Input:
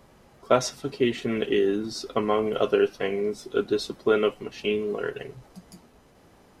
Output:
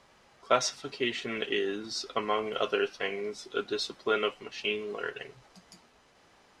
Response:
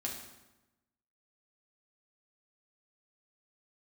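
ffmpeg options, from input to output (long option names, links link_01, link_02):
-af "lowpass=6700,tiltshelf=frequency=630:gain=-7.5,volume=-5.5dB"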